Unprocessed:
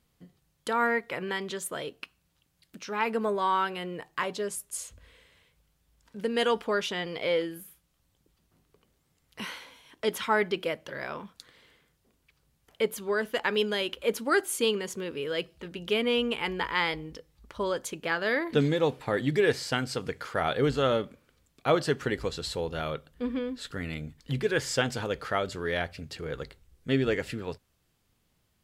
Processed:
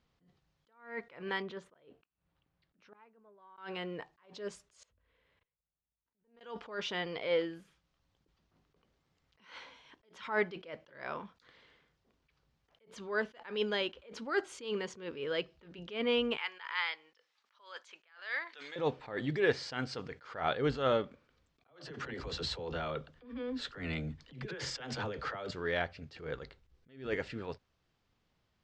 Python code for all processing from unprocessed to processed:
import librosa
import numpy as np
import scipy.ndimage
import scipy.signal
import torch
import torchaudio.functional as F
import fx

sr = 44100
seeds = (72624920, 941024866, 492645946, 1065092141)

y = fx.chain(x, sr, fx.peak_eq(hz=7600.0, db=-14.5, octaves=2.2),
    fx.gate_flip(shuts_db=-26.0, range_db=-29), at=(1.42, 3.58))
y = fx.chain(y, sr, fx.high_shelf(hz=2800.0, db=-10.0),
    fx.level_steps(step_db=22),
    fx.tube_stage(drive_db=35.0, bias=0.75), at=(4.83, 6.41))
y = fx.chain(y, sr, fx.highpass(hz=1300.0, slope=12),
    fx.band_squash(depth_pct=40), at=(16.37, 18.76))
y = fx.chain(y, sr, fx.over_compress(threshold_db=-35.0, ratio=-1.0),
    fx.dispersion(late='lows', ms=44.0, hz=320.0), at=(21.67, 25.51))
y = scipy.signal.sosfilt(scipy.signal.butter(4, 5900.0, 'lowpass', fs=sr, output='sos'), y)
y = fx.peak_eq(y, sr, hz=1000.0, db=4.0, octaves=2.4)
y = fx.attack_slew(y, sr, db_per_s=130.0)
y = F.gain(torch.from_numpy(y), -5.5).numpy()